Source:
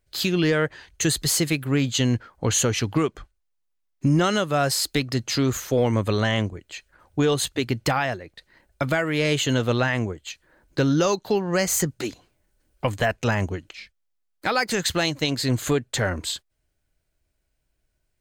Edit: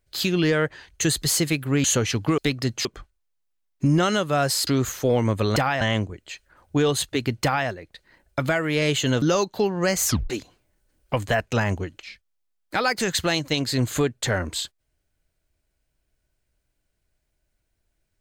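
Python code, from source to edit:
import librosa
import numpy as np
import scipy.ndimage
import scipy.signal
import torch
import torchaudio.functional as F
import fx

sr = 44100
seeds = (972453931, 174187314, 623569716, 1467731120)

y = fx.edit(x, sr, fx.cut(start_s=1.84, length_s=0.68),
    fx.move(start_s=4.88, length_s=0.47, to_s=3.06),
    fx.duplicate(start_s=7.86, length_s=0.25, to_s=6.24),
    fx.cut(start_s=9.65, length_s=1.28),
    fx.tape_stop(start_s=11.76, length_s=0.25), tone=tone)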